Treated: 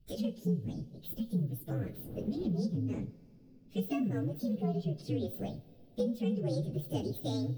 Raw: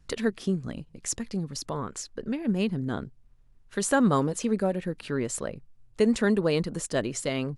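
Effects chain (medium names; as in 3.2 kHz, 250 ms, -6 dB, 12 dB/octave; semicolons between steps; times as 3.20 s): frequency axis rescaled in octaves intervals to 127%; 1.81–2.52 s: wind noise 380 Hz -41 dBFS; graphic EQ 125/250/500/1000/2000/4000/8000 Hz +7/+6/+4/-10/-10/+7/-8 dB; compression, threshold -26 dBFS, peak gain reduction 12 dB; two-slope reverb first 0.38 s, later 3.9 s, from -18 dB, DRR 10 dB; trim -3.5 dB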